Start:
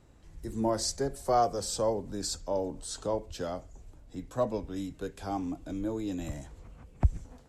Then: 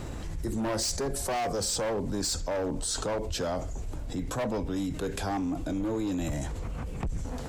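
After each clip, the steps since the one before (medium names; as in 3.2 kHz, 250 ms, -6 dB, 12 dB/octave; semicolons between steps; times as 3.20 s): overload inside the chain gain 30 dB; level flattener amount 70%; trim +2 dB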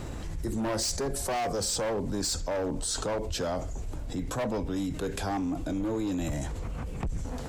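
no audible change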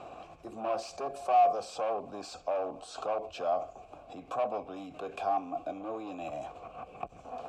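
vowel filter a; trim +9 dB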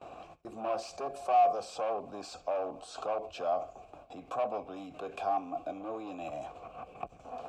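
gate with hold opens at -40 dBFS; trim -1 dB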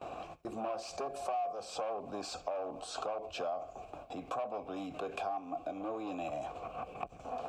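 compression 5:1, threshold -39 dBFS, peak gain reduction 16 dB; trim +4 dB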